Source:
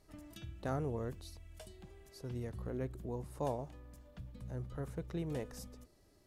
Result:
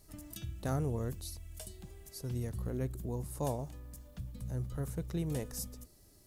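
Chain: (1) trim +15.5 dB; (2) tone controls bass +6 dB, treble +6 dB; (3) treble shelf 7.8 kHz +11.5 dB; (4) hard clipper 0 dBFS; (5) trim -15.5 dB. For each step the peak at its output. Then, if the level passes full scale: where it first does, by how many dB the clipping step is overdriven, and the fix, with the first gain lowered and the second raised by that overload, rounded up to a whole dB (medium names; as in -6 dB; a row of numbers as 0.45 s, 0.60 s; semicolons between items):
-9.0 dBFS, -5.5 dBFS, -5.0 dBFS, -5.0 dBFS, -20.5 dBFS; nothing clips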